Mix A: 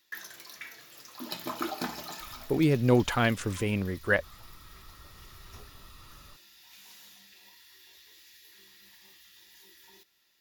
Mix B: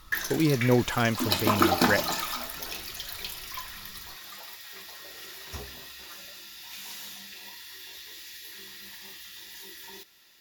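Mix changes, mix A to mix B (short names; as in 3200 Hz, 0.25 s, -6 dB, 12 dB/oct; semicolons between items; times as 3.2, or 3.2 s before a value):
speech: entry -2.20 s; background +11.5 dB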